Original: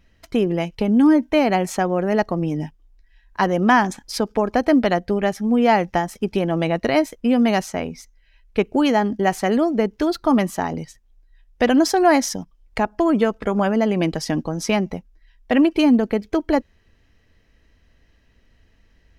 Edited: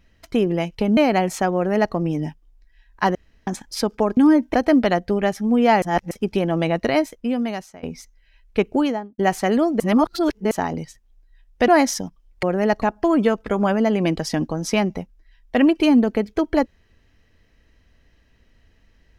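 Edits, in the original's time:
0.97–1.34 s: move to 4.54 s
1.92–2.31 s: copy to 12.78 s
3.52–3.84 s: room tone
5.82–6.11 s: reverse
6.83–7.83 s: fade out, to -21 dB
8.69–9.18 s: studio fade out
9.80–10.51 s: reverse
11.68–12.03 s: delete

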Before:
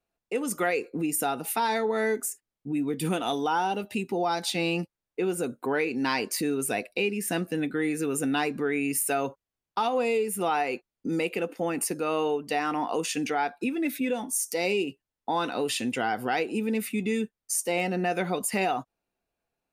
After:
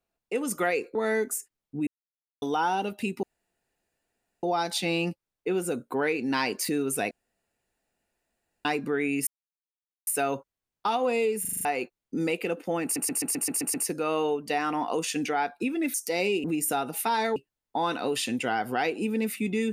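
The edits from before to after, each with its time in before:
0.95–1.87 s: move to 14.89 s
2.79–3.34 s: mute
4.15 s: insert room tone 1.20 s
6.83–8.37 s: room tone
8.99 s: insert silence 0.80 s
10.33 s: stutter in place 0.04 s, 6 plays
11.75 s: stutter 0.13 s, 8 plays
13.95–14.39 s: delete

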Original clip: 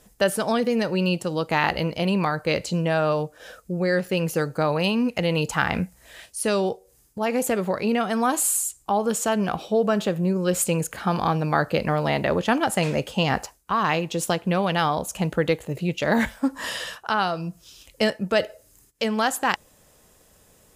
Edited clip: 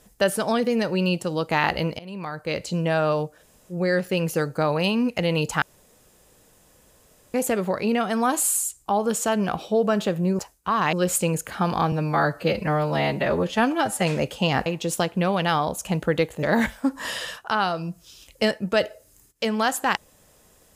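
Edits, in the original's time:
1.99–2.88 s: fade in, from -22.5 dB
3.39–3.73 s: room tone, crossfade 0.10 s
5.62–7.34 s: room tone
11.38–12.78 s: stretch 1.5×
13.42–13.96 s: move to 10.39 s
15.73–16.02 s: delete

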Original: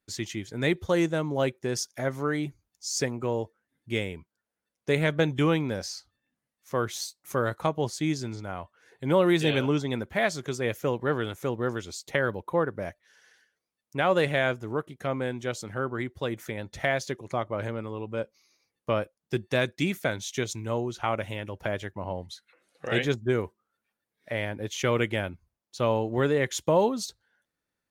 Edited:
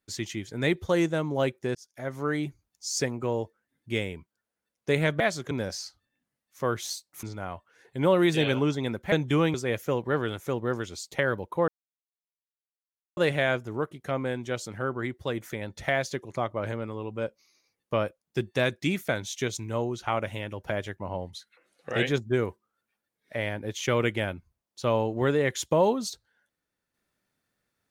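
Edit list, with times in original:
1.75–2.31 s: fade in
5.20–5.62 s: swap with 10.19–10.50 s
7.34–8.30 s: delete
12.64–14.13 s: mute

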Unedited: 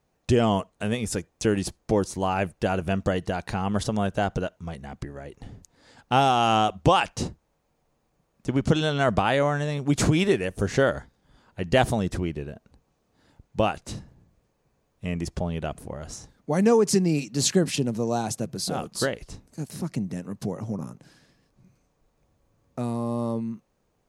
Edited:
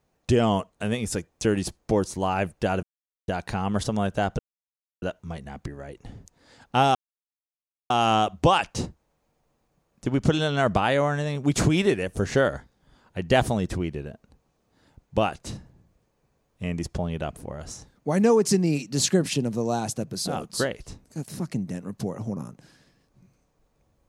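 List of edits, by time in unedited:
2.83–3.28 s: mute
4.39 s: insert silence 0.63 s
6.32 s: insert silence 0.95 s

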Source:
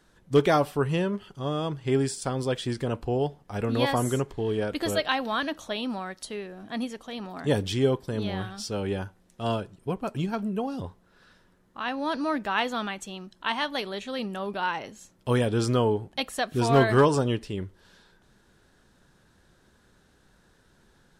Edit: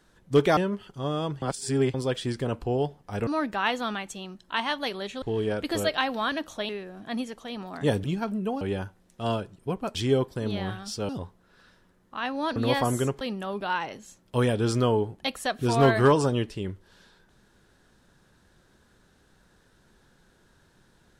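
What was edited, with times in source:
0.57–0.98 s: delete
1.83–2.35 s: reverse
3.68–4.33 s: swap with 12.19–14.14 s
5.80–6.32 s: delete
7.67–8.81 s: swap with 10.15–10.72 s

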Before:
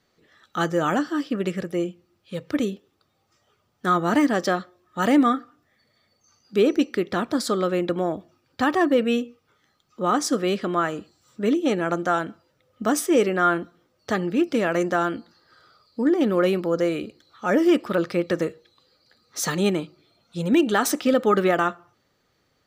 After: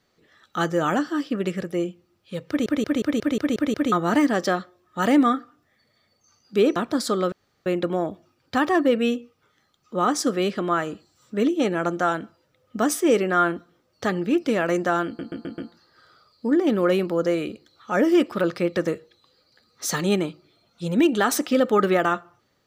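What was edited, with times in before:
2.48 s: stutter in place 0.18 s, 8 plays
6.76–7.16 s: delete
7.72 s: insert room tone 0.34 s
15.12 s: stutter 0.13 s, 5 plays

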